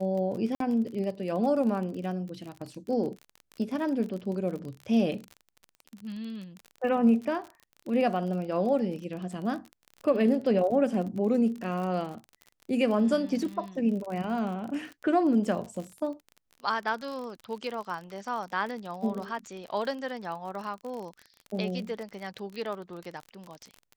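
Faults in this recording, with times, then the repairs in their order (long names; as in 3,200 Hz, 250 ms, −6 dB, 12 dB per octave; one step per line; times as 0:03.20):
surface crackle 35 per second −35 dBFS
0:00.55–0:00.60: drop-out 53 ms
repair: click removal
repair the gap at 0:00.55, 53 ms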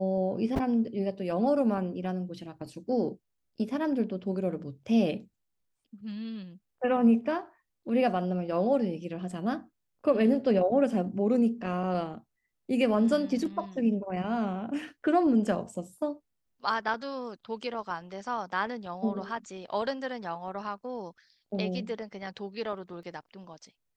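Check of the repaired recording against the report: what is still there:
none of them is left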